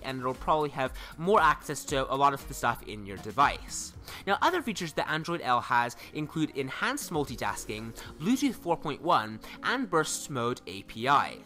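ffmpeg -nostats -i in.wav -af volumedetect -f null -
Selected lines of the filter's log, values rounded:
mean_volume: -29.8 dB
max_volume: -12.5 dB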